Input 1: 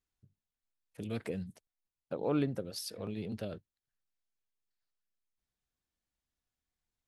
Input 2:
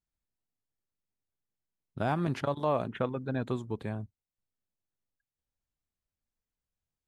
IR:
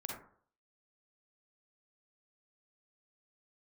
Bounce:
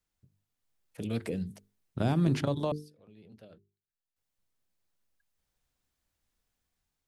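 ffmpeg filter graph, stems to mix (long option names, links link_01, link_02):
-filter_complex "[0:a]volume=2dB[link_01];[1:a]volume=2.5dB,asplit=3[link_02][link_03][link_04];[link_02]atrim=end=2.72,asetpts=PTS-STARTPTS,afade=type=out:start_time=2.716:duration=0.004:curve=hsin[link_05];[link_03]atrim=start=2.72:end=4.16,asetpts=PTS-STARTPTS,volume=0[link_06];[link_04]atrim=start=4.16,asetpts=PTS-STARTPTS,afade=type=in:duration=0.004:curve=hsin[link_07];[link_05][link_06][link_07]concat=n=3:v=0:a=1,asplit=2[link_08][link_09];[link_09]apad=whole_len=312162[link_10];[link_01][link_10]sidechaincompress=threshold=-47dB:ratio=6:attack=7.7:release=1480[link_11];[link_11][link_08]amix=inputs=2:normalize=0,acrossover=split=450|3000[link_12][link_13][link_14];[link_13]acompressor=threshold=-49dB:ratio=2.5[link_15];[link_12][link_15][link_14]amix=inputs=3:normalize=0,bandreject=frequency=50:width_type=h:width=6,bandreject=frequency=100:width_type=h:width=6,bandreject=frequency=150:width_type=h:width=6,bandreject=frequency=200:width_type=h:width=6,bandreject=frequency=250:width_type=h:width=6,bandreject=frequency=300:width_type=h:width=6,bandreject=frequency=350:width_type=h:width=6,bandreject=frequency=400:width_type=h:width=6,bandreject=frequency=450:width_type=h:width=6,dynaudnorm=framelen=260:gausssize=5:maxgain=4dB"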